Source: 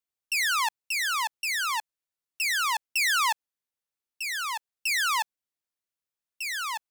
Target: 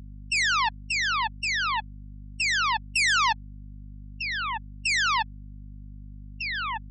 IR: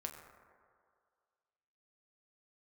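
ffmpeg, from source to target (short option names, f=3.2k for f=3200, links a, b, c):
-af "afftfilt=real='re*gte(hypot(re,im),0.0501)':imag='im*gte(hypot(re,im),0.0501)':win_size=1024:overlap=0.75,aeval=exprs='val(0)+0.00708*(sin(2*PI*50*n/s)+sin(2*PI*2*50*n/s)/2+sin(2*PI*3*50*n/s)/3+sin(2*PI*4*50*n/s)/4+sin(2*PI*5*50*n/s)/5)':c=same,acontrast=36,volume=-3dB"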